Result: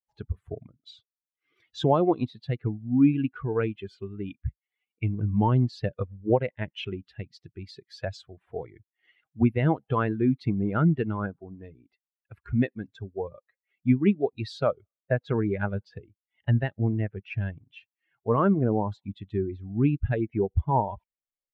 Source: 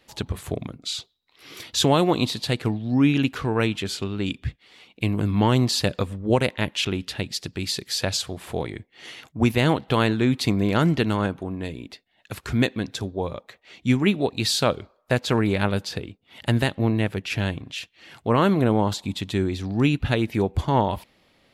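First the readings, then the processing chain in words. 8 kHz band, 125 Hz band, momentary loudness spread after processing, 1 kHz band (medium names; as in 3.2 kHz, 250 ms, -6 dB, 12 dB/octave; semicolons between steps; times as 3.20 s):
under -25 dB, -2.5 dB, 17 LU, -4.0 dB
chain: expander on every frequency bin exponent 2; low-pass 1.4 kHz 12 dB/octave; in parallel at -0.5 dB: compression, threshold -32 dBFS, peak gain reduction 15 dB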